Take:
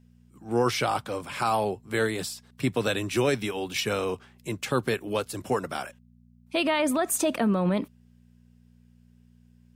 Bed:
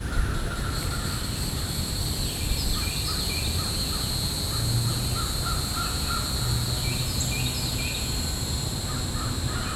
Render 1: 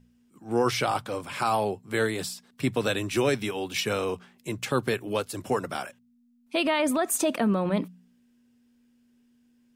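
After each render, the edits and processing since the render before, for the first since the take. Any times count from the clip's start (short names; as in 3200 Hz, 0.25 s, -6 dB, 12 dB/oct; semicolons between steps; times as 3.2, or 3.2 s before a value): de-hum 60 Hz, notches 3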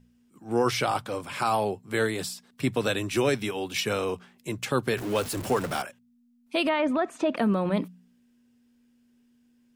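4.97–5.82 zero-crossing step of -32 dBFS; 6.69–7.37 LPF 2600 Hz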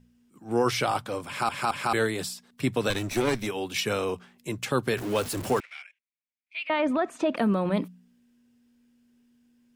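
1.27 stutter in place 0.22 s, 3 plays; 2.9–3.47 minimum comb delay 0.51 ms; 5.6–6.7 ladder band-pass 2400 Hz, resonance 75%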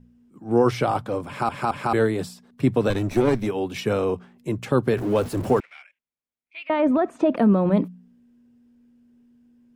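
tilt shelf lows +7.5 dB, about 1400 Hz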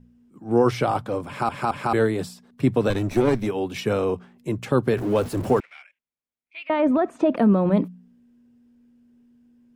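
nothing audible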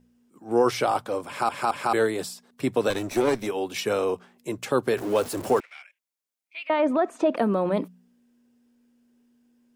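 tone controls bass -13 dB, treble +6 dB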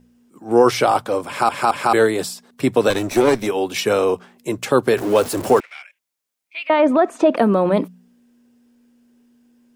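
gain +7.5 dB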